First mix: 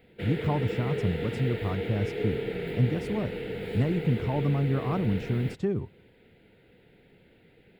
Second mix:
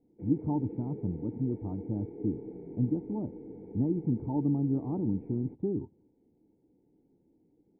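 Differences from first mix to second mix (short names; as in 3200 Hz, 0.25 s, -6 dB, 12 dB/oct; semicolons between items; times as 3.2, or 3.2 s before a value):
speech +6.5 dB; master: add vocal tract filter u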